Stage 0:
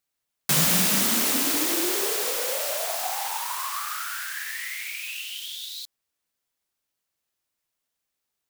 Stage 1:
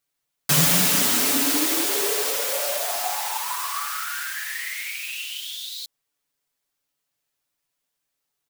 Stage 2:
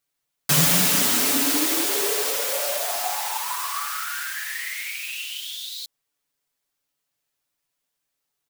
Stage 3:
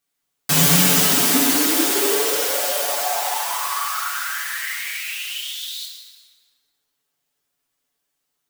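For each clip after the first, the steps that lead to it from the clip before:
comb 7 ms, depth 87%
nothing audible
plate-style reverb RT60 1.9 s, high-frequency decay 0.65×, DRR -2 dB

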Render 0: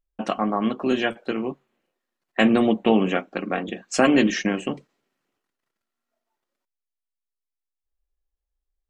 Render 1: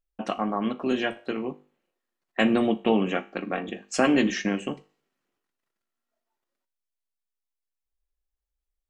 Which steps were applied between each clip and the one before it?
resonator 50 Hz, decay 0.38 s, harmonics all, mix 50%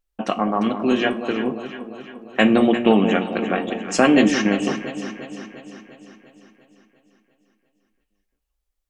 wow and flutter 18 cents; on a send: echo with dull and thin repeats by turns 0.174 s, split 830 Hz, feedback 75%, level -7.5 dB; on the sum: gain +6 dB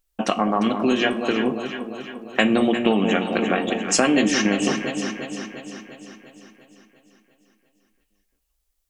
high shelf 3700 Hz +8.5 dB; compressor 3:1, threshold -19 dBFS, peak gain reduction 8 dB; gain +2.5 dB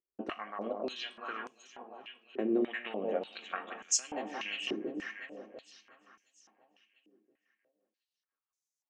stepped band-pass 3.4 Hz 370–6300 Hz; gain -4 dB

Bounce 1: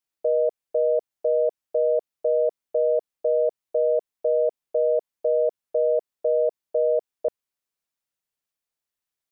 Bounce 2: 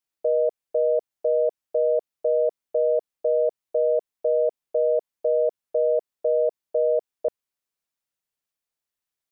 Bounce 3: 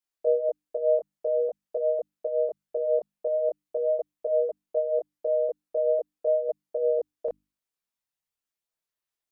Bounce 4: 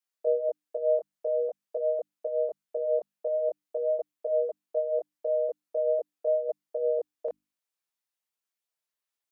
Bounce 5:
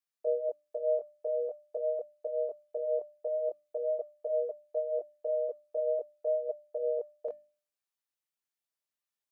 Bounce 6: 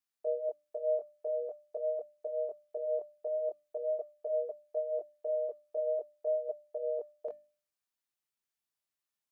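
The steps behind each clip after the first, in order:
nothing audible
chorus voices 4, 0.41 Hz, delay 23 ms, depth 3.3 ms; notches 50/100/150/200/250/300 Hz
HPF 460 Hz 6 dB/oct
resonator 600 Hz, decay 0.4 s, mix 70%; gain +5.5 dB
bell 510 Hz -7.5 dB 0.25 oct

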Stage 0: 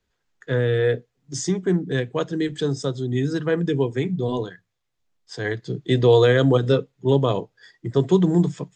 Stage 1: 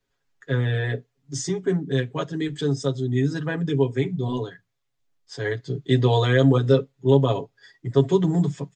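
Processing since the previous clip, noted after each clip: comb 7.3 ms, depth 93%; gain -4 dB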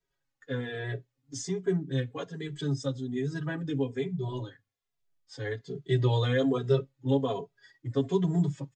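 endless flanger 2.6 ms -1.2 Hz; gain -4.5 dB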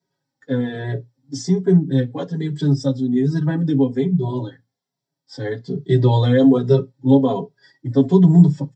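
reverb, pre-delay 3 ms, DRR 8.5 dB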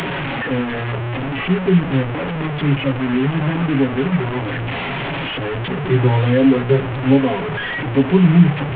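delta modulation 16 kbps, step -17 dBFS; mismatched tape noise reduction encoder only

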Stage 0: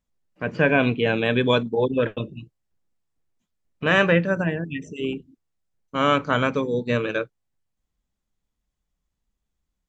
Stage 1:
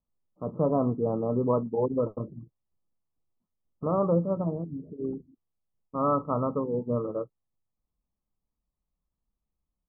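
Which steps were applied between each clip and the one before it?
Chebyshev low-pass 1300 Hz, order 10; gain -4.5 dB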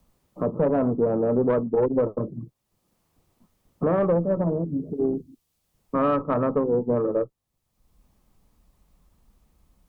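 tube stage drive 20 dB, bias 0.35; dynamic EQ 420 Hz, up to +5 dB, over -40 dBFS, Q 0.83; three-band squash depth 70%; gain +4 dB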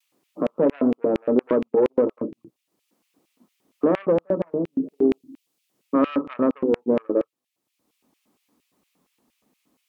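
LFO high-pass square 4.3 Hz 280–2500 Hz; vibrato 0.4 Hz 16 cents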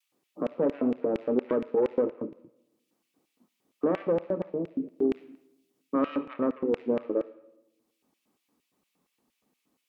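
on a send at -7 dB: band-pass 2700 Hz, Q 0.58 + reverb RT60 0.95 s, pre-delay 3 ms; on the sum: gain -6.5 dB

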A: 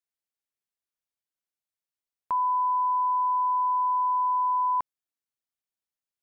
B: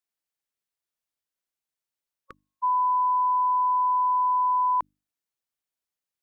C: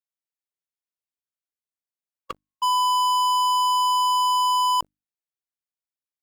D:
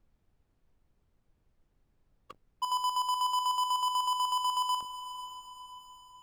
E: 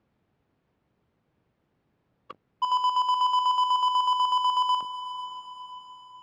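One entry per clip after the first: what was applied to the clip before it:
notches 50/100/150/200/250/300 Hz; spectral repair 1.88–2.61, 550–1100 Hz before; gain +2 dB
sample leveller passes 5
chopper 8.1 Hz, depth 60%, duty 45%; diffused feedback echo 0.511 s, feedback 48%, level -12 dB; added noise brown -61 dBFS; gain -7.5 dB
BPF 130–3400 Hz; gain +6.5 dB

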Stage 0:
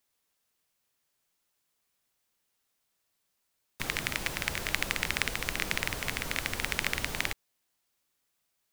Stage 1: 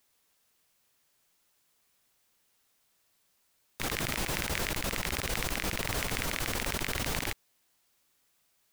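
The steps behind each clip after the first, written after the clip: negative-ratio compressor -37 dBFS, ratio -1; gain +3.5 dB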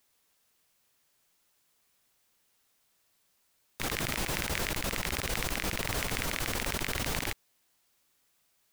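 nothing audible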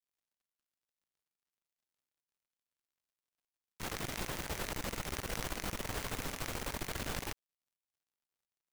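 switching dead time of 0.17 ms; gain -4 dB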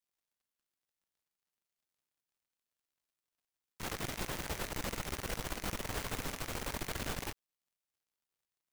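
limiter -25 dBFS, peak gain reduction 8.5 dB; gain +1 dB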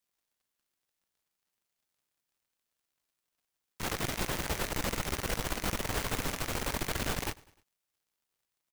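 feedback echo 0.101 s, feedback 52%, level -23 dB; gain +5.5 dB

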